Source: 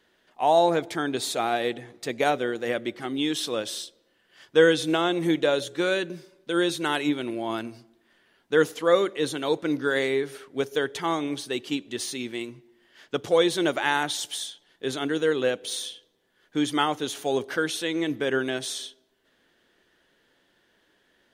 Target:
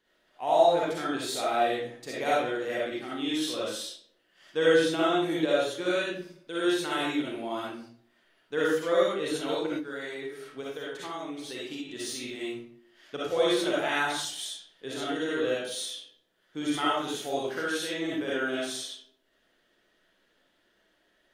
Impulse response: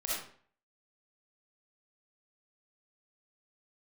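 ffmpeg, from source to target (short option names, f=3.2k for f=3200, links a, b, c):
-filter_complex "[1:a]atrim=start_sample=2205,afade=t=out:st=0.39:d=0.01,atrim=end_sample=17640[a];[0:a][a]afir=irnorm=-1:irlink=0,asettb=1/sr,asplit=3[b][c][d];[b]atrim=end=9.784[e];[c]atrim=start=9.78:end=11.89,asetpts=PTS-STARTPTS,afade=t=in:d=0.004:c=qsin,afade=t=out:st=2.106:d=0.004:c=qsin,acompressor=threshold=-27dB:ratio=6[f];[d]atrim=start=11.886[g];[e][f]acrossfade=d=0.004:c1=hsin:c2=qsin[h];[h][g]acrossfade=d=0.004:c1=qsin:c2=hsin,volume=-7dB"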